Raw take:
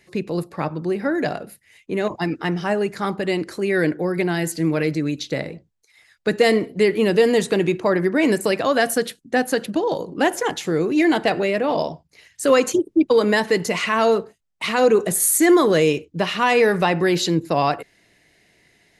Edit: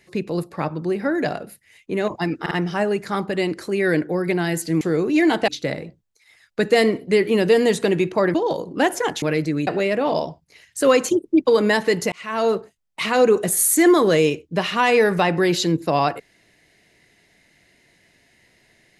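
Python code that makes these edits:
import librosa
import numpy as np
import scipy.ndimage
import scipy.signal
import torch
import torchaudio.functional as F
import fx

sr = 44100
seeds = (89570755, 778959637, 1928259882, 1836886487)

y = fx.edit(x, sr, fx.stutter(start_s=2.41, slice_s=0.05, count=3),
    fx.swap(start_s=4.71, length_s=0.45, other_s=10.63, other_length_s=0.67),
    fx.cut(start_s=8.02, length_s=1.73),
    fx.fade_in_span(start_s=13.75, length_s=0.45), tone=tone)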